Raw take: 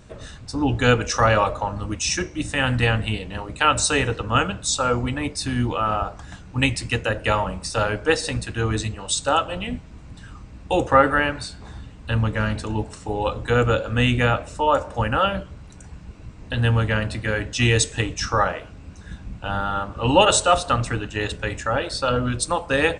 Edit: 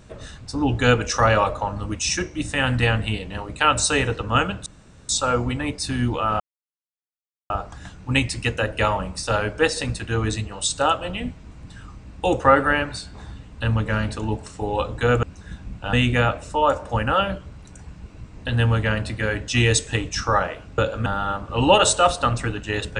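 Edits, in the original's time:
0:04.66: splice in room tone 0.43 s
0:05.97: splice in silence 1.10 s
0:13.70–0:13.98: swap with 0:18.83–0:19.53

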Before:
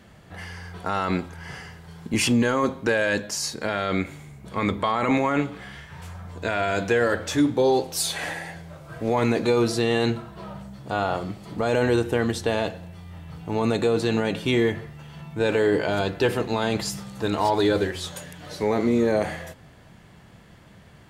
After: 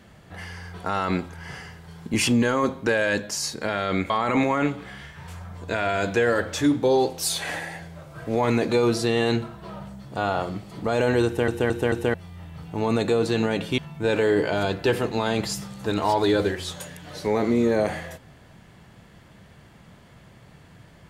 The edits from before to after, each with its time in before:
0:04.10–0:04.84: remove
0:12.00: stutter in place 0.22 s, 4 plays
0:14.52–0:15.14: remove

